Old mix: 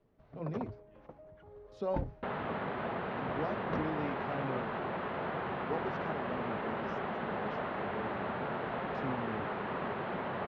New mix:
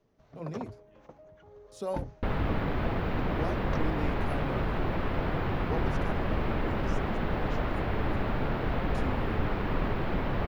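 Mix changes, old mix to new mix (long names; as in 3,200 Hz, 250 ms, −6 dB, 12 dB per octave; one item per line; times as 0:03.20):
second sound: remove loudspeaker in its box 260–8,400 Hz, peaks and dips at 300 Hz −10 dB, 490 Hz −3 dB, 2,300 Hz −3 dB, 5,200 Hz −6 dB
master: remove high-frequency loss of the air 250 metres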